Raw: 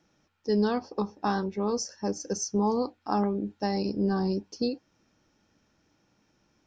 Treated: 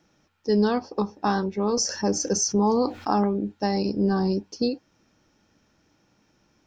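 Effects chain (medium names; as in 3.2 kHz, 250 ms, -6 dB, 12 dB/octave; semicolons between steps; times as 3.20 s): 1.77–3.12 s: level flattener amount 50%; trim +4 dB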